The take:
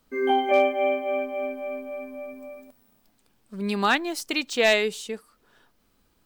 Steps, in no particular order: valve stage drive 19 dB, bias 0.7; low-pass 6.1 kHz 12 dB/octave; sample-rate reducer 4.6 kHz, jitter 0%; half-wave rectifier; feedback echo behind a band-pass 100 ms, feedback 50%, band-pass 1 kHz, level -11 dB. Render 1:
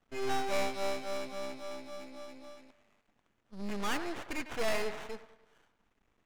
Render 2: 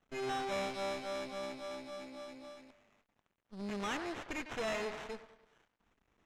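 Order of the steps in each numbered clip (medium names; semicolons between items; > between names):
sample-rate reducer > feedback echo behind a band-pass > valve stage > low-pass > half-wave rectifier; sample-rate reducer > feedback echo behind a band-pass > half-wave rectifier > valve stage > low-pass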